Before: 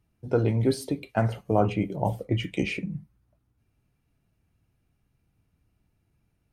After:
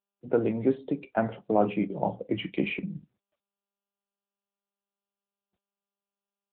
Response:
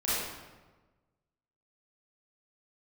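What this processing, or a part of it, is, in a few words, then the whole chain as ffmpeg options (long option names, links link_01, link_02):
mobile call with aggressive noise cancelling: -af "highpass=frequency=160:width=0.5412,highpass=frequency=160:width=1.3066,afftdn=noise_reduction=36:noise_floor=-53" -ar 8000 -c:a libopencore_amrnb -b:a 10200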